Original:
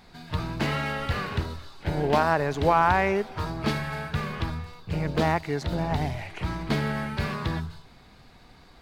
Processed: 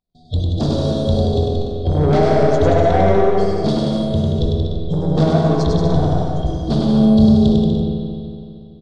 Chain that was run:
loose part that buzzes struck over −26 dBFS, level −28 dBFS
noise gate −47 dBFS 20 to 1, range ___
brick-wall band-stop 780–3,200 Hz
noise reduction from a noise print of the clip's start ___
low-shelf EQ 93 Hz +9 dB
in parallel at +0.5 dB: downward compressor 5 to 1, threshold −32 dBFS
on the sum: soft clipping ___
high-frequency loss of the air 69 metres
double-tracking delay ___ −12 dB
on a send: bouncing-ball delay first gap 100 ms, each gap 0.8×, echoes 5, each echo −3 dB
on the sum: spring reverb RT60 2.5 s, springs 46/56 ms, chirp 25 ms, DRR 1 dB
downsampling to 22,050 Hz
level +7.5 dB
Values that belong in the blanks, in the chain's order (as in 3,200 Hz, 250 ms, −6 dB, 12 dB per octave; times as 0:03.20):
−29 dB, 20 dB, −21 dBFS, 22 ms